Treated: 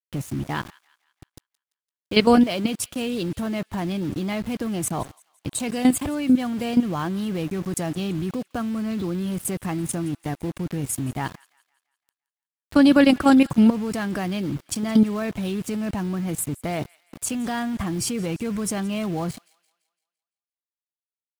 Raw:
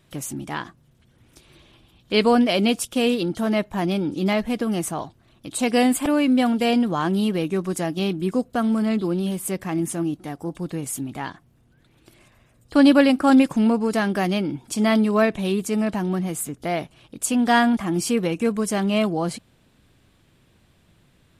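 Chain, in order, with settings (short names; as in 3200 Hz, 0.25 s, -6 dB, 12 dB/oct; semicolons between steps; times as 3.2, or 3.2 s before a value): HPF 45 Hz 12 dB/oct; bell 97 Hz +8.5 dB 0.86 oct; harmonic-percussive split percussive +4 dB; low shelf 160 Hz +11 dB; level quantiser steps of 13 dB; sample gate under -36.5 dBFS; thin delay 0.17 s, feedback 44%, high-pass 1600 Hz, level -21 dB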